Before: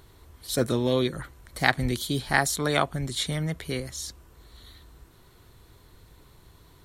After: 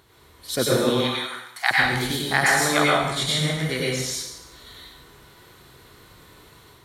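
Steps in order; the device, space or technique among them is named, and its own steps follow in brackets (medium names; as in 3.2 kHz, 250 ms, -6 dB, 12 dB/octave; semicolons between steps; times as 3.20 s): 0.89–1.71 s: steep high-pass 690 Hz 96 dB/octave; peaking EQ 2.1 kHz +3.5 dB 2.9 oct; far laptop microphone (reverberation RT60 0.90 s, pre-delay 90 ms, DRR -4.5 dB; high-pass 140 Hz 6 dB/octave; level rider gain up to 4 dB); trim -2.5 dB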